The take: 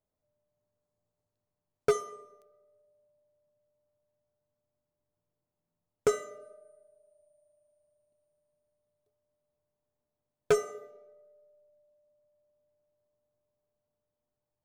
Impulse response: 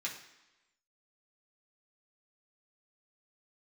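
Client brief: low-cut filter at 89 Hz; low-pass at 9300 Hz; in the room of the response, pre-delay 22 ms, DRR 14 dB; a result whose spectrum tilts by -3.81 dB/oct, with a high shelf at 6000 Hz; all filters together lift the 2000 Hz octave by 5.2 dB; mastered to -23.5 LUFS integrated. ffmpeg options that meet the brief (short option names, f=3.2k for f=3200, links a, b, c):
-filter_complex "[0:a]highpass=89,lowpass=9.3k,equalizer=f=2k:t=o:g=7.5,highshelf=f=6k:g=-6,asplit=2[a][b];[1:a]atrim=start_sample=2205,adelay=22[c];[b][c]afir=irnorm=-1:irlink=0,volume=-16dB[d];[a][d]amix=inputs=2:normalize=0,volume=7.5dB"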